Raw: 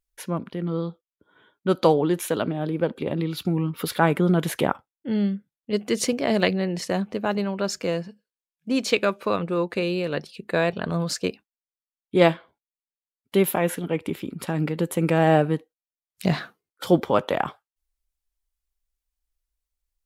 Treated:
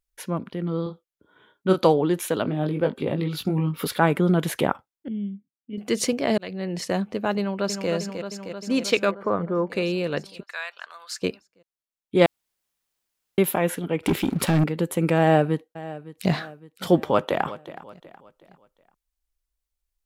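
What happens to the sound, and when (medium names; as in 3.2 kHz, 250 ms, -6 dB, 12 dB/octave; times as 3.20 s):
0.83–1.85 s: doubling 32 ms -5 dB
2.43–3.87 s: doubling 20 ms -5 dB
5.08–5.78 s: cascade formant filter i
6.38–6.80 s: fade in
7.38–7.90 s: echo throw 310 ms, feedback 75%, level -6.5 dB
9.11–9.70 s: Savitzky-Golay filter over 41 samples
10.43–11.22 s: ladder high-pass 940 Hz, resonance 20%
12.26–13.38 s: room tone
14.03–14.64 s: waveshaping leveller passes 3
15.19–16.31 s: echo throw 560 ms, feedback 50%, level -17 dB
16.93–17.46 s: echo throw 370 ms, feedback 40%, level -16 dB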